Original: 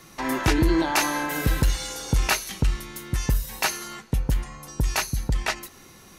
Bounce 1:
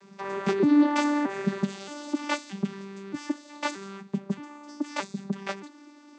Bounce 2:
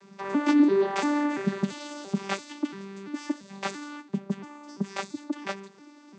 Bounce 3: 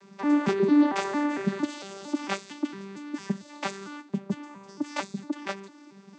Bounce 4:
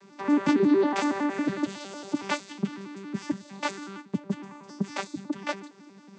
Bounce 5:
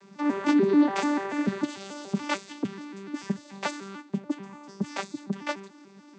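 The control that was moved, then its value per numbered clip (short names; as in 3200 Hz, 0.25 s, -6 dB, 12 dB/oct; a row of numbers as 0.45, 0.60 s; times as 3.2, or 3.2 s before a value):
arpeggiated vocoder, a note every: 624, 340, 227, 92, 146 ms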